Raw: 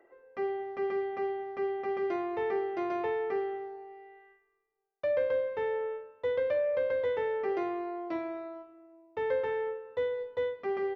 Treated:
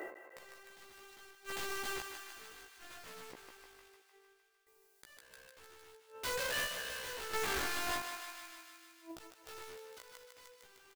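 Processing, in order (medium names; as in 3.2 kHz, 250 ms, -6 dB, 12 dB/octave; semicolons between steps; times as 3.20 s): treble shelf 3.3 kHz +11.5 dB; in parallel at -1 dB: peak limiter -28 dBFS, peak gain reduction 8.5 dB; on the sum: compression 8:1, threshold -37 dBFS, peak gain reduction 15 dB; integer overflow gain 35.5 dB; random-step tremolo 1.5 Hz, depth 95%; inverted gate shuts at -44 dBFS, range -31 dB; doubling 16 ms -2.5 dB; thinning echo 152 ms, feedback 72%, high-pass 640 Hz, level -7.5 dB; endings held to a fixed fall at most 110 dB/s; trim +12 dB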